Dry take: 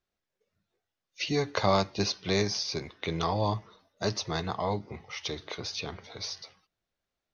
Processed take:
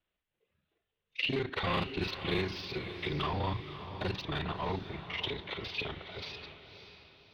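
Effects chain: time reversed locally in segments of 34 ms; dynamic bell 640 Hz, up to -7 dB, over -44 dBFS, Q 2.3; saturation -26.5 dBFS, distortion -11 dB; resonant high shelf 4.3 kHz -12 dB, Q 3; formant-preserving pitch shift -1.5 st; echo that smears into a reverb 559 ms, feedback 40%, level -10.5 dB

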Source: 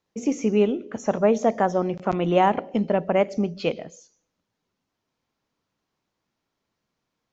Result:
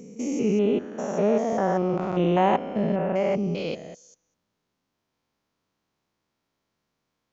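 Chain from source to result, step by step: spectrogram pixelated in time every 200 ms; 0.85–1.53 s: high-pass 170 Hz; trim +2 dB

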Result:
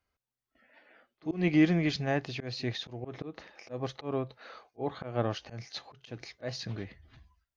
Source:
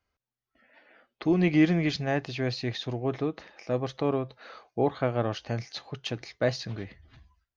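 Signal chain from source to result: slow attack 166 ms; pre-echo 36 ms -21.5 dB; trim -2 dB

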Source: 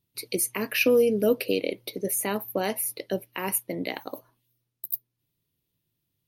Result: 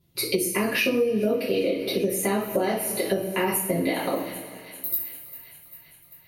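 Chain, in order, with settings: tilt EQ -1.5 dB/octave; feedback echo behind a high-pass 395 ms, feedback 68%, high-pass 1.9 kHz, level -19 dB; two-slope reverb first 0.4 s, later 2.2 s, from -19 dB, DRR -7.5 dB; compression 6:1, threshold -27 dBFS, peak gain reduction 18.5 dB; 0.70–2.96 s: treble shelf 12 kHz -6.5 dB; trim +5.5 dB

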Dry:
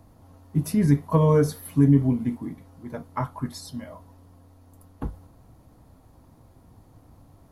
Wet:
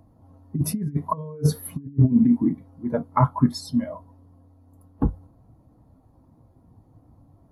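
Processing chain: bass shelf 99 Hz -7.5 dB; compressor with a negative ratio -27 dBFS, ratio -0.5; spectral contrast expander 1.5:1; trim +6.5 dB

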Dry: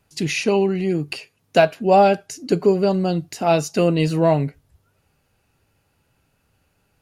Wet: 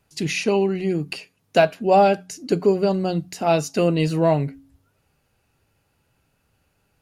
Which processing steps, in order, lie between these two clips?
de-hum 91.23 Hz, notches 3; trim -1.5 dB

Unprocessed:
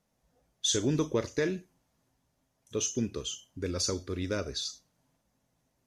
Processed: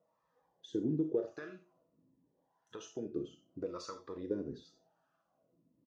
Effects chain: treble shelf 6.1 kHz -8 dB; band-stop 2.2 kHz, Q 5.3; comb 6.2 ms, depth 31%; compression 6:1, threshold -36 dBFS, peak gain reduction 13 dB; wah-wah 0.83 Hz 240–1300 Hz, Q 2.7; gated-style reverb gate 100 ms flat, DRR 8 dB; Shepard-style phaser falling 0.53 Hz; trim +10.5 dB

